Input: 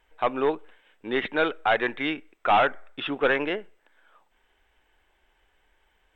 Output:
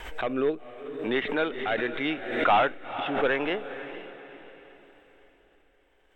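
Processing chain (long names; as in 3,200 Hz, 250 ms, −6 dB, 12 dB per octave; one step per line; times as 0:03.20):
rotating-speaker cabinet horn 0.75 Hz
on a send: feedback delay with all-pass diffusion 474 ms, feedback 42%, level −12 dB
on the sum: background raised ahead of every attack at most 63 dB per second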